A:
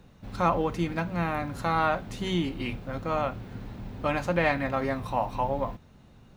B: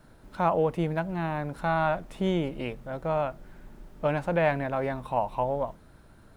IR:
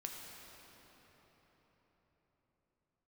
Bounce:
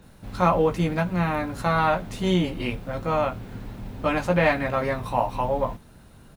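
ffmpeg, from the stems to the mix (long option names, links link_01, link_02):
-filter_complex "[0:a]volume=2.5dB[link_01];[1:a]highshelf=frequency=4500:gain=11,adelay=20,volume=-1dB[link_02];[link_01][link_02]amix=inputs=2:normalize=0"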